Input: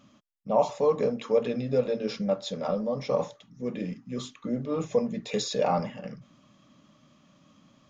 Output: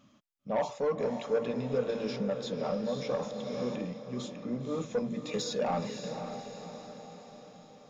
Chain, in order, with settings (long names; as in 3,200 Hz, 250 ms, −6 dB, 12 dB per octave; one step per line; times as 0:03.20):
soft clipping −18.5 dBFS, distortion −15 dB
feedback delay with all-pass diffusion 534 ms, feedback 54%, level −8 dB
0:01.89–0:03.76: multiband upward and downward compressor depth 70%
level −4 dB